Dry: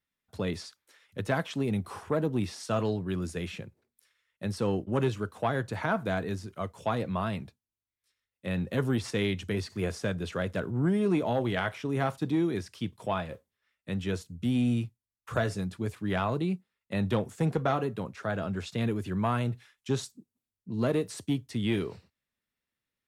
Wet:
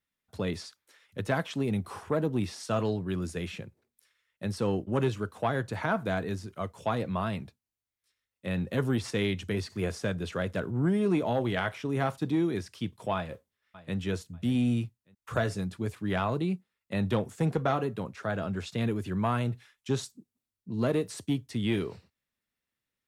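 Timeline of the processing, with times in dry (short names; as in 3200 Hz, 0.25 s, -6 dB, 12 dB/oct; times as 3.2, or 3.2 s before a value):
13.15–13.96 echo throw 0.59 s, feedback 25%, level -17 dB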